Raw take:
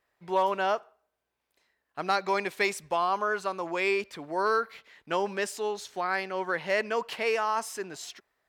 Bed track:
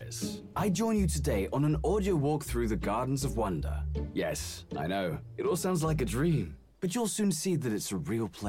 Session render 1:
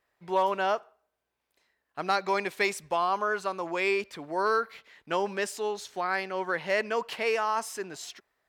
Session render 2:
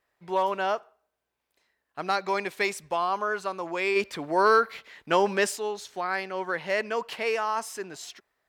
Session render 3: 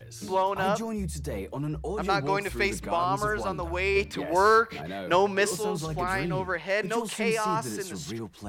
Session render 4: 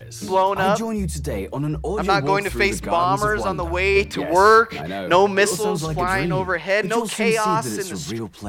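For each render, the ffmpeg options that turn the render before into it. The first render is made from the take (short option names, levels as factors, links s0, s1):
-af anull
-filter_complex "[0:a]asplit=3[s0][s1][s2];[s0]afade=t=out:st=3.95:d=0.02[s3];[s1]acontrast=58,afade=t=in:st=3.95:d=0.02,afade=t=out:st=5.55:d=0.02[s4];[s2]afade=t=in:st=5.55:d=0.02[s5];[s3][s4][s5]amix=inputs=3:normalize=0"
-filter_complex "[1:a]volume=0.631[s0];[0:a][s0]amix=inputs=2:normalize=0"
-af "volume=2.37,alimiter=limit=0.708:level=0:latency=1"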